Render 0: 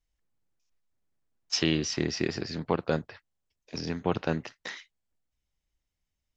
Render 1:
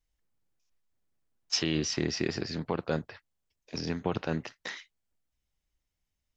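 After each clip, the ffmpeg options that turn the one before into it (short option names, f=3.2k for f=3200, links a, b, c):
-af "alimiter=limit=-16dB:level=0:latency=1:release=36"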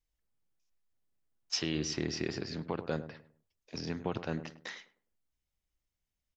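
-filter_complex "[0:a]asplit=2[a][b];[b]adelay=103,lowpass=f=800:p=1,volume=-10.5dB,asplit=2[c][d];[d]adelay=103,lowpass=f=800:p=1,volume=0.35,asplit=2[e][f];[f]adelay=103,lowpass=f=800:p=1,volume=0.35,asplit=2[g][h];[h]adelay=103,lowpass=f=800:p=1,volume=0.35[i];[a][c][e][g][i]amix=inputs=5:normalize=0,volume=-4.5dB"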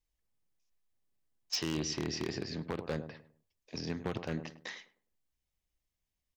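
-af "bandreject=f=1.4k:w=9.4,aeval=exprs='0.0562*(abs(mod(val(0)/0.0562+3,4)-2)-1)':c=same"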